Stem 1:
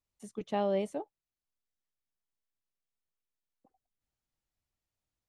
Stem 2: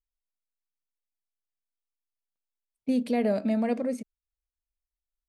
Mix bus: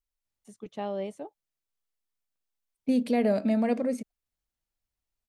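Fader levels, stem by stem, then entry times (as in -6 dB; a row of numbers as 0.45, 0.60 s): -3.0, +1.0 dB; 0.25, 0.00 s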